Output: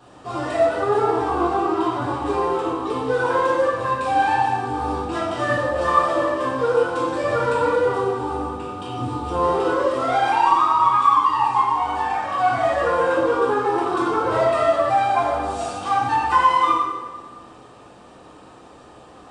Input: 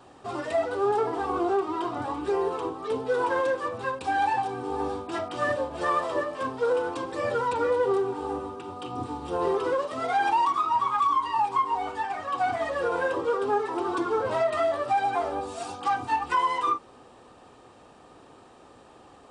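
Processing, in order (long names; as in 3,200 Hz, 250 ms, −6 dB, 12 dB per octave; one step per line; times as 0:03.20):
dense smooth reverb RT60 1.3 s, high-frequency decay 0.8×, DRR −6 dB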